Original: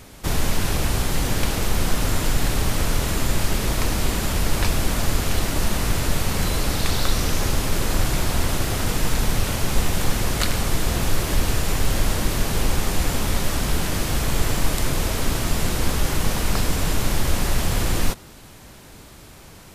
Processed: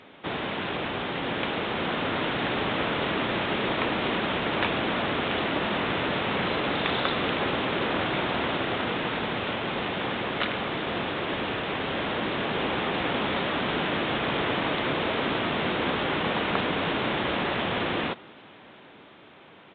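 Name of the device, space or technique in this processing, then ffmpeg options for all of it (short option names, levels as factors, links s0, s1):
Bluetooth headset: -af "highpass=250,dynaudnorm=f=280:g=13:m=1.58,aresample=8000,aresample=44100,volume=0.841" -ar 16000 -c:a sbc -b:a 64k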